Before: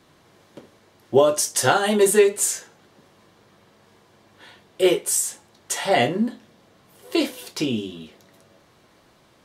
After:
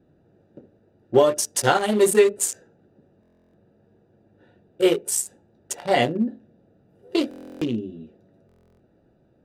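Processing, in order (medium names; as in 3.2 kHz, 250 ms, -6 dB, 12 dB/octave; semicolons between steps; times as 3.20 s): local Wiener filter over 41 samples; buffer glitch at 3.21/7.29/8.47 s, samples 1024, times 13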